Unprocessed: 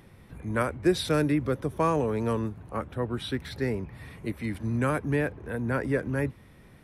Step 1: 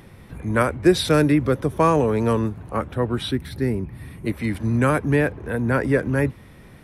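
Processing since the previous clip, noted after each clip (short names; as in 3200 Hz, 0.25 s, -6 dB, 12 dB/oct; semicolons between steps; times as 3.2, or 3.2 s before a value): spectral gain 3.32–4.26, 390–8200 Hz -7 dB; gain +7.5 dB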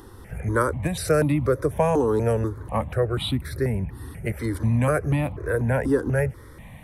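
dynamic EQ 2100 Hz, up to -5 dB, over -36 dBFS, Q 1.1; compressor 2:1, threshold -21 dBFS, peak gain reduction 6.5 dB; step phaser 4.1 Hz 620–1600 Hz; gain +5 dB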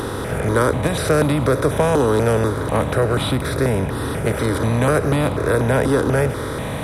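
per-bin compression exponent 0.4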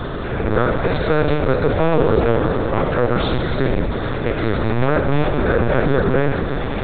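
soft clip -5.5 dBFS, distortion -25 dB; Schroeder reverb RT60 3.1 s, DRR 3 dB; LPC vocoder at 8 kHz pitch kept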